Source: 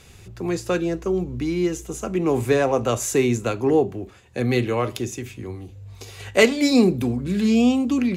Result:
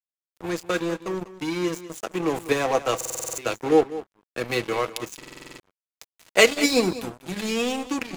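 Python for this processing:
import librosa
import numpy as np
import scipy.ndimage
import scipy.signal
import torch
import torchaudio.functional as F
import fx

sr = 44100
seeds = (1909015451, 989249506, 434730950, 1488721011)

p1 = fx.highpass(x, sr, hz=510.0, slope=6)
p2 = fx.high_shelf(p1, sr, hz=6600.0, db=2.5)
p3 = p2 + 0.48 * np.pad(p2, (int(6.2 * sr / 1000.0), 0))[:len(p2)]
p4 = fx.level_steps(p3, sr, step_db=10)
p5 = p3 + (p4 * librosa.db_to_amplitude(-2.5))
p6 = np.sign(p5) * np.maximum(np.abs(p5) - 10.0 ** (-28.5 / 20.0), 0.0)
p7 = p6 + fx.echo_single(p6, sr, ms=196, db=-15.0, dry=0)
y = fx.buffer_glitch(p7, sr, at_s=(2.96, 5.18), block=2048, repeats=8)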